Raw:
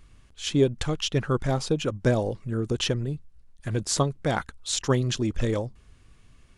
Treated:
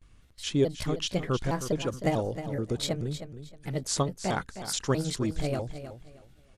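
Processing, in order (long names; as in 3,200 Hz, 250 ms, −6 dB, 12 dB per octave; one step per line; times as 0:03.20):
pitch shifter gated in a rhythm +4 semitones, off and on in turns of 215 ms
repeating echo 313 ms, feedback 25%, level −11 dB
noise gate with hold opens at −46 dBFS
level −3.5 dB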